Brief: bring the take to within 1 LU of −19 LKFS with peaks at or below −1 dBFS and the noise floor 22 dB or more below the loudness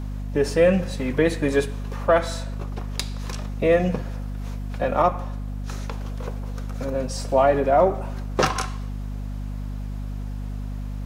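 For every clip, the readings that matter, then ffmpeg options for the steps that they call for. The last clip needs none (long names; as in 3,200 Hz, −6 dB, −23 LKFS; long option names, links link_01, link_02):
mains hum 50 Hz; hum harmonics up to 250 Hz; level of the hum −27 dBFS; integrated loudness −24.5 LKFS; sample peak −7.0 dBFS; target loudness −19.0 LKFS
→ -af "bandreject=frequency=50:width_type=h:width=6,bandreject=frequency=100:width_type=h:width=6,bandreject=frequency=150:width_type=h:width=6,bandreject=frequency=200:width_type=h:width=6,bandreject=frequency=250:width_type=h:width=6"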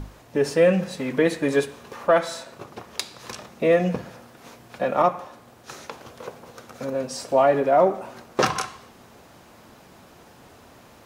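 mains hum none found; integrated loudness −23.0 LKFS; sample peak −7.5 dBFS; target loudness −19.0 LKFS
→ -af "volume=4dB"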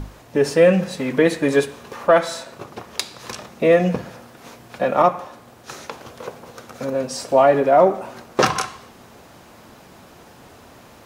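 integrated loudness −19.0 LKFS; sample peak −3.5 dBFS; background noise floor −47 dBFS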